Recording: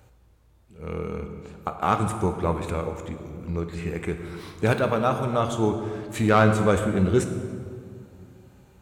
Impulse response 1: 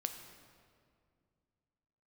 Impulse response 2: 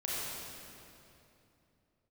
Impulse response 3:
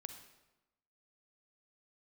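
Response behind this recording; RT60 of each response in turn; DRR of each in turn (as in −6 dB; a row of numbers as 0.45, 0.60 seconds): 1; 2.2, 2.9, 1.0 seconds; 6.0, −7.0, 7.0 decibels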